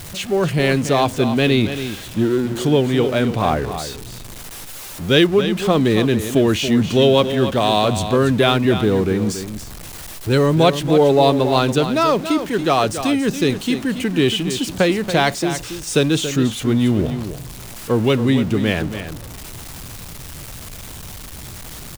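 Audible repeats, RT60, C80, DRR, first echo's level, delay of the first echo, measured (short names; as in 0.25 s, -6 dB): 1, none, none, none, -10.0 dB, 0.28 s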